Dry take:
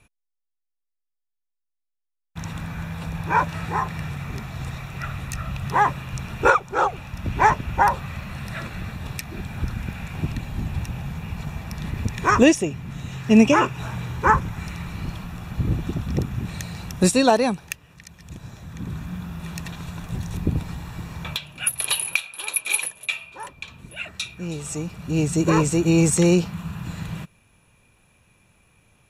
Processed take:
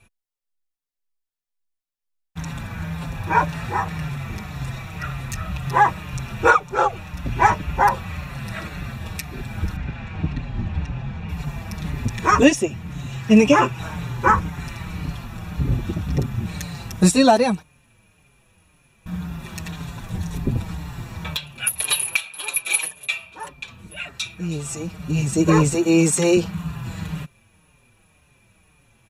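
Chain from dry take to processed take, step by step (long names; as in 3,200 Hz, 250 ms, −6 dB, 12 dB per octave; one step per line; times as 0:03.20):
0:09.76–0:11.29: high-frequency loss of the air 150 metres
0:17.62–0:19.06: fill with room tone
0:25.74–0:26.37: high-pass filter 210 Hz 12 dB per octave
barber-pole flanger 5.5 ms −1.9 Hz
level +4.5 dB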